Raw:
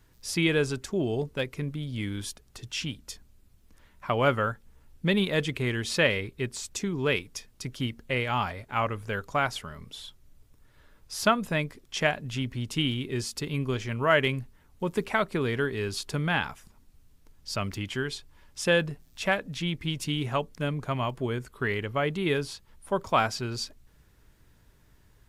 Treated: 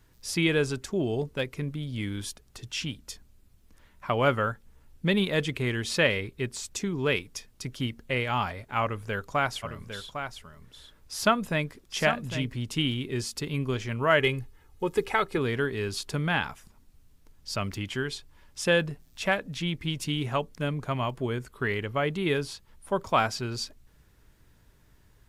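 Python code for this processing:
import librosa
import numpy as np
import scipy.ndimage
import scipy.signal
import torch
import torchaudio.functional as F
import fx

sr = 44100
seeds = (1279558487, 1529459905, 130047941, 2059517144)

y = fx.echo_single(x, sr, ms=804, db=-8.5, at=(9.62, 12.62), fade=0.02)
y = fx.comb(y, sr, ms=2.4, depth=0.59, at=(14.2, 15.38))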